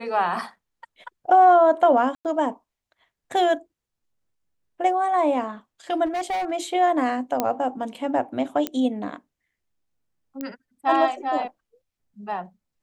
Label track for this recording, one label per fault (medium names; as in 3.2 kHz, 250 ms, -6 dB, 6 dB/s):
2.150000	2.250000	dropout 98 ms
6.050000	6.520000	clipped -23 dBFS
7.400000	7.400000	pop -8 dBFS
8.670000	8.670000	pop -10 dBFS
10.410000	10.410000	pop -17 dBFS